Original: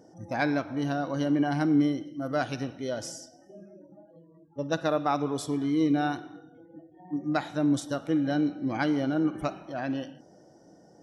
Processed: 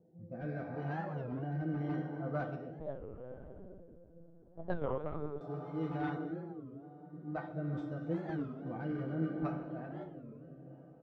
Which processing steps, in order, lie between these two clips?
high shelf 3100 Hz +12 dB; feedback echo 0.742 s, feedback 48%, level -24 dB; plate-style reverb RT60 4.7 s, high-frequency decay 0.8×, DRR 2 dB; wavefolder -16 dBFS; air absorption 64 m; resonator 170 Hz, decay 0.2 s, harmonics odd, mix 80%; rotary speaker horn 0.8 Hz; low-pass opened by the level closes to 480 Hz, open at -22 dBFS; notch comb 280 Hz; 2.8–5.41 LPC vocoder at 8 kHz pitch kept; record warp 33 1/3 rpm, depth 250 cents; gain +4 dB

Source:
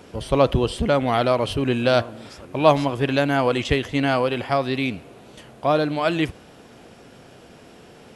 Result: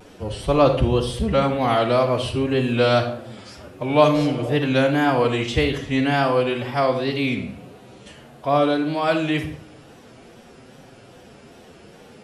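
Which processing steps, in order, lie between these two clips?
time stretch by phase-locked vocoder 1.5×; wow and flutter 100 cents; spectral repair 4.07–4.52, 470–1100 Hz after; on a send: reverb RT60 0.60 s, pre-delay 35 ms, DRR 7 dB

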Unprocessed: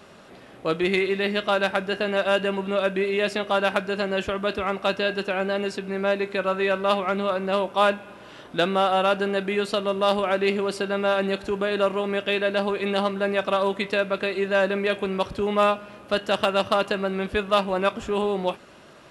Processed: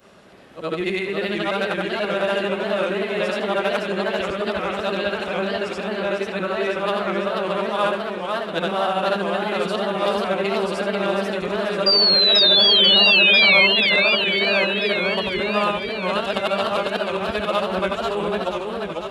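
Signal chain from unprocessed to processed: short-time reversal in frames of 0.193 s; painted sound fall, 11.86–13.67, 2100–4800 Hz -18 dBFS; warbling echo 0.492 s, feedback 66%, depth 204 cents, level -4.5 dB; gain +2 dB

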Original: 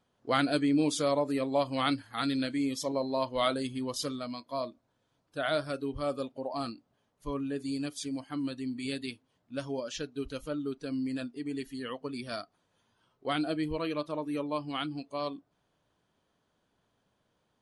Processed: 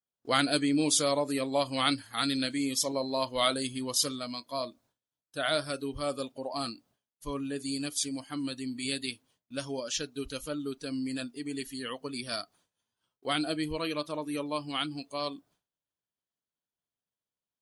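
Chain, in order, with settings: high shelf 2600 Hz +9.5 dB; expander -58 dBFS; high shelf 7600 Hz +6 dB; gain -1 dB

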